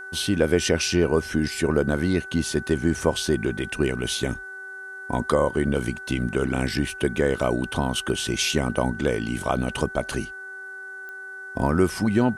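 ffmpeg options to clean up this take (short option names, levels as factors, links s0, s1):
-af "adeclick=t=4,bandreject=f=385.8:t=h:w=4,bandreject=f=771.6:t=h:w=4,bandreject=f=1157.4:t=h:w=4,bandreject=f=1543.2:t=h:w=4,bandreject=f=1929:t=h:w=4,bandreject=f=1500:w=30,agate=range=0.0891:threshold=0.0316"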